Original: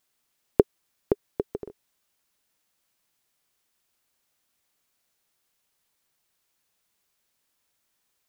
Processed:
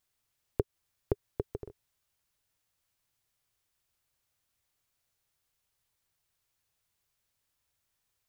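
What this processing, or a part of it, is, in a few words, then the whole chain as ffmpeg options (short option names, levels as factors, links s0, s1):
car stereo with a boomy subwoofer: -af "lowshelf=f=150:t=q:w=1.5:g=8.5,alimiter=limit=0.473:level=0:latency=1:release=174,volume=0.531"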